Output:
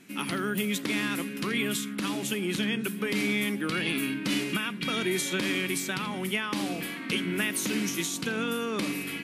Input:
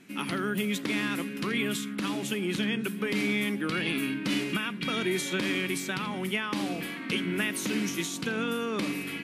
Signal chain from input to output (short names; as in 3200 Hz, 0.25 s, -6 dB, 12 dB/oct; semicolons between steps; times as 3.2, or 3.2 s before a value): high shelf 5700 Hz +6 dB